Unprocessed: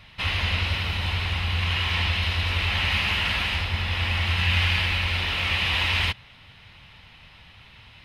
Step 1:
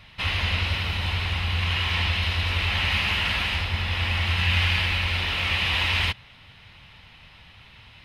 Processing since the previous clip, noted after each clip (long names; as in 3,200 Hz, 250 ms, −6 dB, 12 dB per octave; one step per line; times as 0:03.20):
no processing that can be heard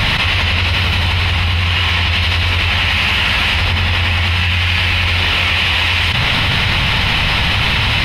envelope flattener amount 100%
level +5 dB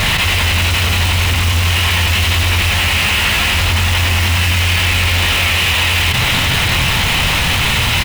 in parallel at −6 dB: wrap-around overflow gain 12 dB
on the sum: double-tracking delay 24 ms −10.5 dB
level −1 dB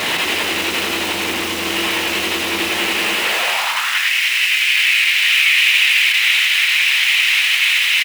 echo with shifted repeats 81 ms, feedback 56%, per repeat −140 Hz, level −8 dB
high-pass filter sweep 330 Hz → 2,200 Hz, 0:03.16–0:04.15
level −4.5 dB